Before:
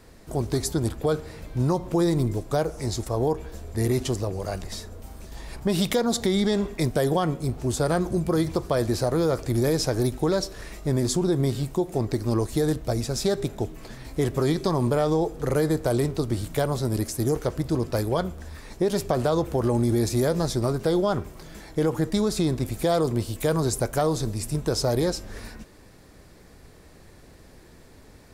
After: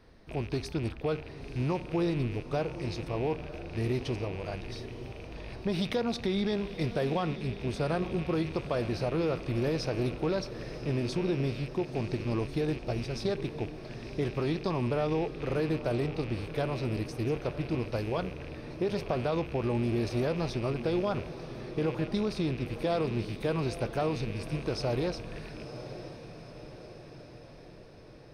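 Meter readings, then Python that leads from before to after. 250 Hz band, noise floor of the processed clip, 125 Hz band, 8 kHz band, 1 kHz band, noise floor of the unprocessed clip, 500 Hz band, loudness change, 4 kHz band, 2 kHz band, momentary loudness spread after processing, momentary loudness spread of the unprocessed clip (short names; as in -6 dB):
-6.5 dB, -48 dBFS, -6.5 dB, -18.5 dB, -6.5 dB, -50 dBFS, -6.5 dB, -7.0 dB, -7.5 dB, -3.0 dB, 12 LU, 10 LU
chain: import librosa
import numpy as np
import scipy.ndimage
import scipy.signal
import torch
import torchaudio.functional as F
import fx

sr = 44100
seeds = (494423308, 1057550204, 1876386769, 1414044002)

y = fx.rattle_buzz(x, sr, strikes_db=-36.0, level_db=-28.0)
y = scipy.signal.savgol_filter(y, 15, 4, mode='constant')
y = fx.echo_diffused(y, sr, ms=975, feedback_pct=58, wet_db=-12)
y = F.gain(torch.from_numpy(y), -7.0).numpy()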